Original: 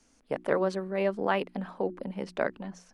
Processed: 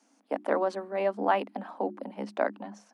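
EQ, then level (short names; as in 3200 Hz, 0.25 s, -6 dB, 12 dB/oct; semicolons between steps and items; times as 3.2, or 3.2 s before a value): rippled Chebyshev high-pass 200 Hz, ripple 9 dB; +5.5 dB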